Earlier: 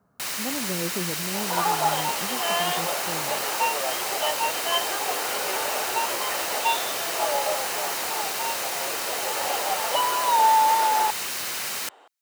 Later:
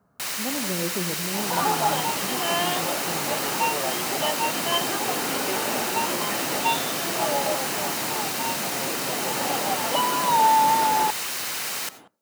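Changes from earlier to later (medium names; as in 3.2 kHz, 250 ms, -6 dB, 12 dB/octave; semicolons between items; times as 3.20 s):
second sound: remove high-pass 430 Hz 24 dB/octave; reverb: on, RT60 0.45 s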